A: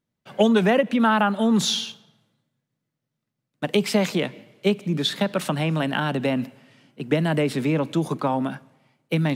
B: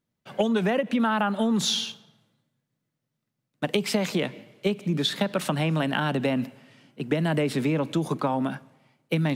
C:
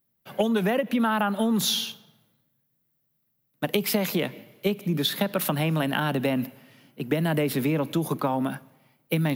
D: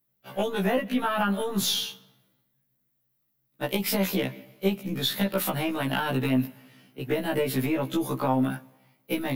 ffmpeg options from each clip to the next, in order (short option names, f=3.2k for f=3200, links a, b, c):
-af "acompressor=threshold=-20dB:ratio=6"
-af "aexciter=amount=10.4:drive=2.6:freq=11k"
-af "aeval=exprs='(tanh(3.55*val(0)+0.3)-tanh(0.3))/3.55':c=same,afftfilt=real='re*1.73*eq(mod(b,3),0)':imag='im*1.73*eq(mod(b,3),0)':win_size=2048:overlap=0.75,volume=2.5dB"